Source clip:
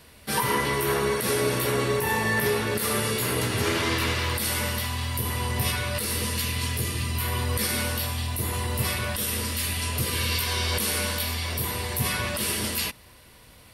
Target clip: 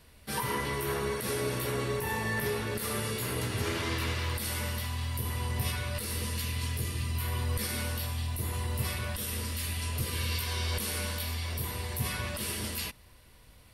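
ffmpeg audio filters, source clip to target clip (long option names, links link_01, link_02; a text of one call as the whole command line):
ffmpeg -i in.wav -af "lowshelf=frequency=70:gain=12,volume=-8dB" out.wav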